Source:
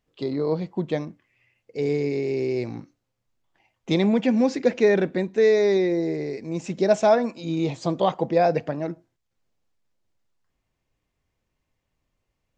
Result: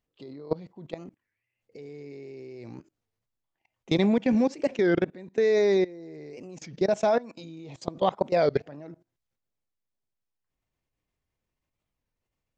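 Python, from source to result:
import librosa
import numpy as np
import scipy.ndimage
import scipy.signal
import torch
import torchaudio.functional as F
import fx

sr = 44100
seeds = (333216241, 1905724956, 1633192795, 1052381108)

y = fx.high_shelf(x, sr, hz=2400.0, db=6.0, at=(8.22, 8.66))
y = fx.level_steps(y, sr, step_db=21)
y = fx.record_warp(y, sr, rpm=33.33, depth_cents=250.0)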